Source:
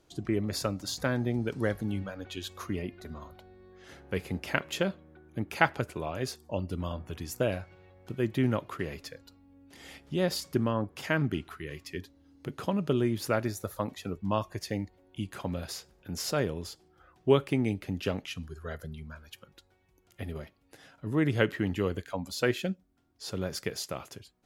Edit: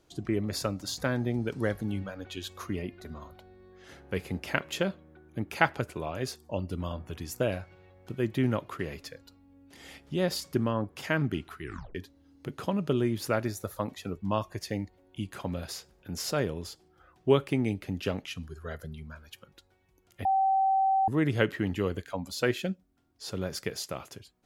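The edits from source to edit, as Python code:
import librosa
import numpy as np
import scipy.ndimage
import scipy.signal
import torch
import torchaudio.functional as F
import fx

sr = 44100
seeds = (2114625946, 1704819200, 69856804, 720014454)

y = fx.edit(x, sr, fx.tape_stop(start_s=11.63, length_s=0.32),
    fx.bleep(start_s=20.25, length_s=0.83, hz=772.0, db=-21.5), tone=tone)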